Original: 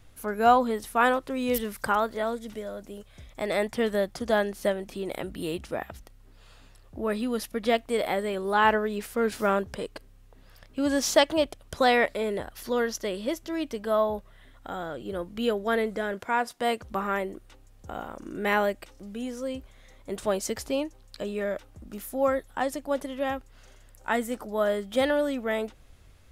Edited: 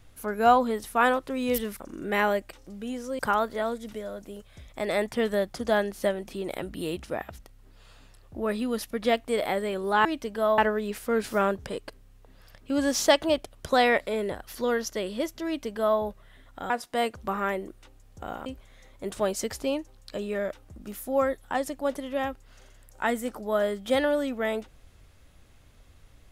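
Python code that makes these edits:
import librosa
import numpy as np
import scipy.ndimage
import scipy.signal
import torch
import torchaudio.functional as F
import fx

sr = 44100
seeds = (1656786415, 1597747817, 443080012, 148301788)

y = fx.edit(x, sr, fx.duplicate(start_s=13.54, length_s=0.53, to_s=8.66),
    fx.cut(start_s=14.78, length_s=1.59),
    fx.move(start_s=18.13, length_s=1.39, to_s=1.8), tone=tone)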